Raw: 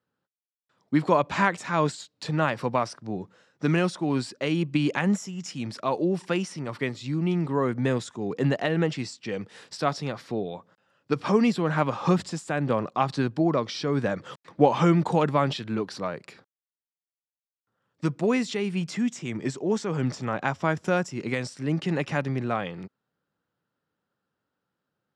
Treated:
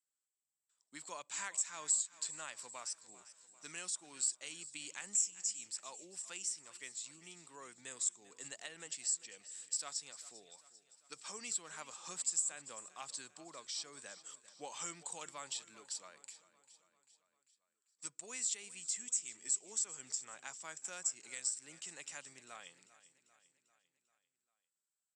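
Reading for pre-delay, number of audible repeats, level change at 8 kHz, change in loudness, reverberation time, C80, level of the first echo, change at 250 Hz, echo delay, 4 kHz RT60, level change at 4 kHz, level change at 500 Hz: no reverb, 4, +8.5 dB, -13.0 dB, no reverb, no reverb, -17.0 dB, -36.0 dB, 395 ms, no reverb, -9.5 dB, -30.5 dB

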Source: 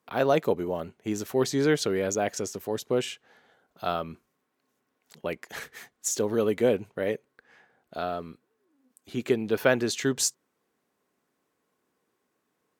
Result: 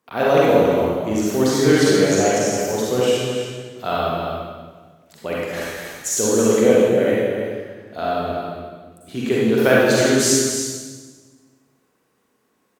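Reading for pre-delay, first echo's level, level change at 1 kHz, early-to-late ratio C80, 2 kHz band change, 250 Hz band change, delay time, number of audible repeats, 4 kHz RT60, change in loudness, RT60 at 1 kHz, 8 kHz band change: 37 ms, -7.5 dB, +10.0 dB, -1.5 dB, +10.0 dB, +11.0 dB, 278 ms, 1, 1.3 s, +9.5 dB, 1.4 s, +10.0 dB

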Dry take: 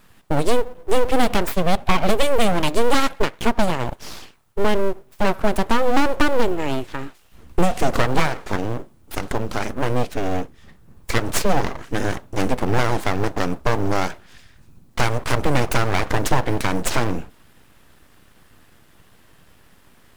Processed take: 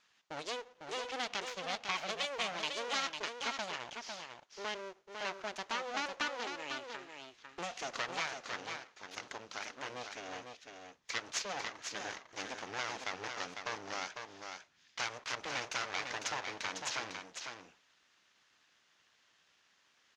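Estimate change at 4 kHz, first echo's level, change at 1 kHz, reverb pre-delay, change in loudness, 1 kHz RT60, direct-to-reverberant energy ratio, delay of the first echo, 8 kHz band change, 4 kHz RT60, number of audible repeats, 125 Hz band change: -9.5 dB, -6.0 dB, -17.0 dB, no reverb, -17.0 dB, no reverb, no reverb, 501 ms, -11.5 dB, no reverb, 1, -33.5 dB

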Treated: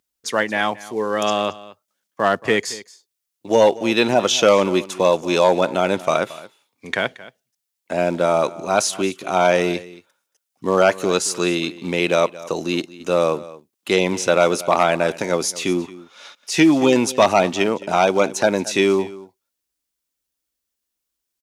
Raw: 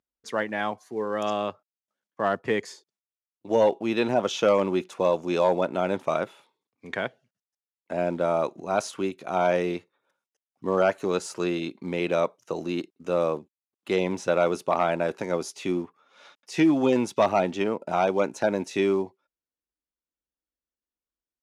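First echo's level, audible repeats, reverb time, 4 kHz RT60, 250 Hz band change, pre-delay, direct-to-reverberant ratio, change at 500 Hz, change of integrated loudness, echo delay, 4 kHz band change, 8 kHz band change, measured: -18.5 dB, 1, no reverb, no reverb, +6.0 dB, no reverb, no reverb, +6.5 dB, +7.0 dB, 225 ms, +13.0 dB, +15.5 dB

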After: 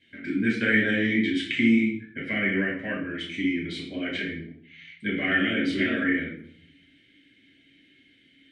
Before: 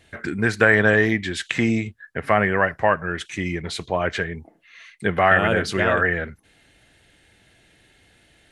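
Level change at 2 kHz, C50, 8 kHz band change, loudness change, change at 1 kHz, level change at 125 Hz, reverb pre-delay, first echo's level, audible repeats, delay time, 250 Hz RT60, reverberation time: -5.5 dB, 5.0 dB, under -10 dB, -4.5 dB, -18.5 dB, -9.0 dB, 5 ms, no echo, no echo, no echo, 0.85 s, 0.65 s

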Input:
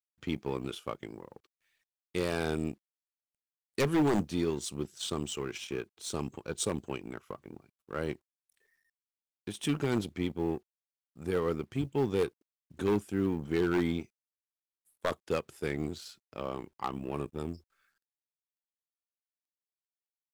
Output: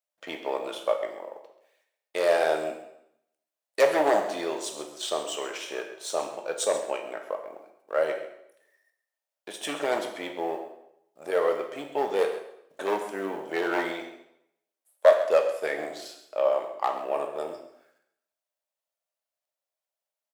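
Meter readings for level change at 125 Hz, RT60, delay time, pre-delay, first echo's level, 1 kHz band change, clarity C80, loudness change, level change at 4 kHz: under -15 dB, 0.75 s, 133 ms, 7 ms, -14.0 dB, +10.0 dB, 9.0 dB, +5.5 dB, +4.5 dB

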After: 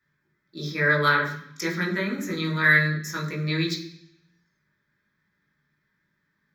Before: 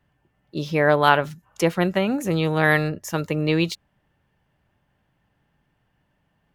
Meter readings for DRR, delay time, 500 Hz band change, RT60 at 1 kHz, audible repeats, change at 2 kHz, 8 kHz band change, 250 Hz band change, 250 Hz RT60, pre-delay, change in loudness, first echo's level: -2.5 dB, no echo, -8.5 dB, 0.60 s, no echo, +3.0 dB, -2.5 dB, -5.0 dB, 0.90 s, 16 ms, -2.5 dB, no echo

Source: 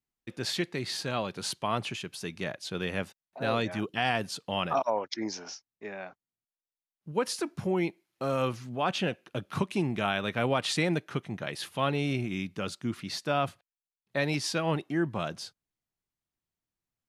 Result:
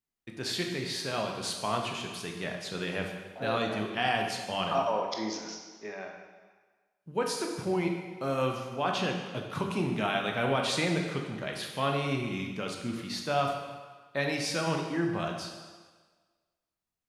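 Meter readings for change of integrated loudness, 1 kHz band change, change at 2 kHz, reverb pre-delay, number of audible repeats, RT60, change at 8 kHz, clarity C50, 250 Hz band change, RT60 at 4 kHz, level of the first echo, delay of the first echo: 0.0 dB, +1.0 dB, 0.0 dB, 13 ms, no echo, 1.4 s, 0.0 dB, 4.0 dB, -1.0 dB, 1.3 s, no echo, no echo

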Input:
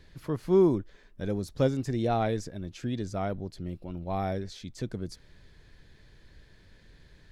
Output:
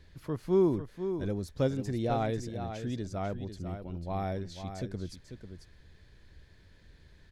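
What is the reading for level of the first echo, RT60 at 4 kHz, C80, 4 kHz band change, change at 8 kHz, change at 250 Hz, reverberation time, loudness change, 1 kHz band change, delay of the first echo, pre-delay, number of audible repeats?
-9.0 dB, no reverb, no reverb, -3.0 dB, -3.0 dB, -3.0 dB, no reverb, -3.0 dB, -3.0 dB, 494 ms, no reverb, 1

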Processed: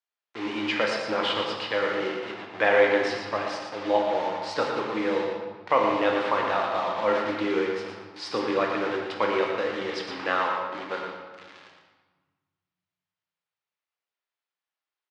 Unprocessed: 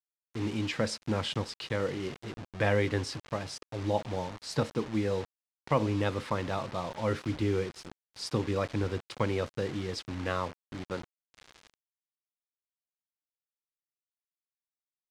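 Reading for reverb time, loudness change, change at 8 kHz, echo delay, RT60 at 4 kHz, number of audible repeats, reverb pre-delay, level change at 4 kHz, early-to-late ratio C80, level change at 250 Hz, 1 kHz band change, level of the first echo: 1.3 s, +6.5 dB, no reading, 116 ms, 0.95 s, 1, 10 ms, +6.5 dB, 2.5 dB, +2.5 dB, +10.5 dB, -6.5 dB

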